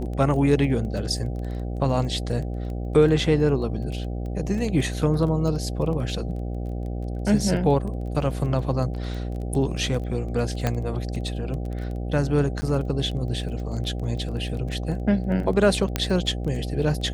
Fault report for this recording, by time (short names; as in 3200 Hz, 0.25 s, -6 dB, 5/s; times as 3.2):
buzz 60 Hz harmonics 13 -29 dBFS
crackle 16/s -31 dBFS
10.67 pop -9 dBFS
12.61–12.62 gap 10 ms
15.96 pop -7 dBFS